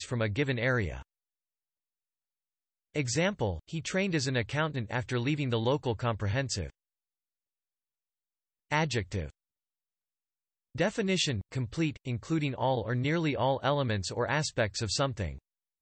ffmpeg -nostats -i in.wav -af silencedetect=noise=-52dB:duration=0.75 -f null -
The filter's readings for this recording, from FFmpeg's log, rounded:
silence_start: 1.03
silence_end: 2.94 | silence_duration: 1.92
silence_start: 6.70
silence_end: 8.70 | silence_duration: 2.00
silence_start: 9.30
silence_end: 10.75 | silence_duration: 1.45